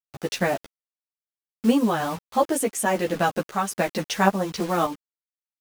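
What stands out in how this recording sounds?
a quantiser's noise floor 6-bit, dither none; random-step tremolo; a shimmering, thickened sound

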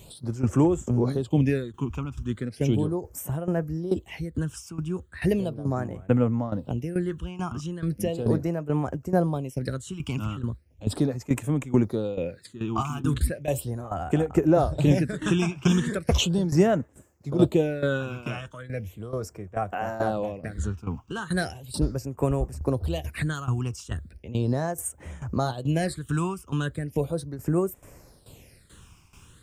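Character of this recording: a quantiser's noise floor 12-bit, dither none; tremolo saw down 2.3 Hz, depth 80%; phasing stages 8, 0.37 Hz, lowest notch 540–4300 Hz

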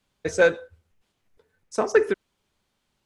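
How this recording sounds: noise floor -76 dBFS; spectral tilt -4.0 dB/octave

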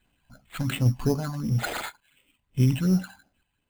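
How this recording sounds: random-step tremolo; phasing stages 12, 2.8 Hz, lowest notch 400–2100 Hz; aliases and images of a low sample rate 5.6 kHz, jitter 0%

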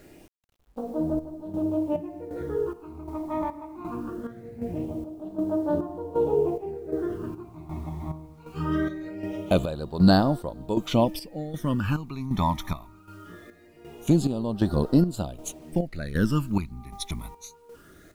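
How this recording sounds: phasing stages 12, 0.22 Hz, lowest notch 490–2300 Hz; a quantiser's noise floor 10-bit, dither none; chopped level 1.3 Hz, depth 65%, duty 55%

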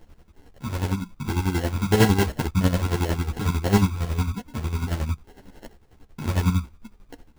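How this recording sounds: phasing stages 12, 2.7 Hz, lowest notch 570–1200 Hz; chopped level 11 Hz, depth 65%, duty 40%; aliases and images of a low sample rate 1.2 kHz, jitter 0%; a shimmering, thickened sound

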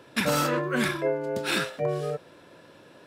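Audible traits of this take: noise floor -53 dBFS; spectral tilt -4.5 dB/octave

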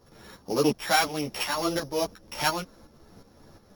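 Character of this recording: a buzz of ramps at a fixed pitch in blocks of 8 samples; tremolo saw up 2.8 Hz, depth 65%; a shimmering, thickened sound

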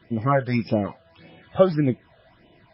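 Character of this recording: phasing stages 8, 1.7 Hz, lowest notch 270–1500 Hz; MP3

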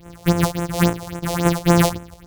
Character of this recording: a buzz of ramps at a fixed pitch in blocks of 256 samples; phasing stages 4, 3.6 Hz, lowest notch 240–4600 Hz; random flutter of the level

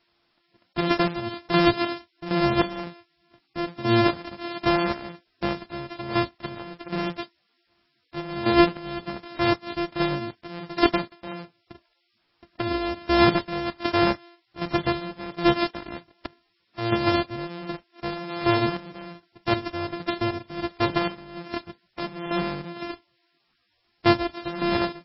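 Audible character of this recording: a buzz of ramps at a fixed pitch in blocks of 128 samples; chopped level 1.3 Hz, depth 65%, duty 40%; a quantiser's noise floor 12-bit, dither triangular; MP3

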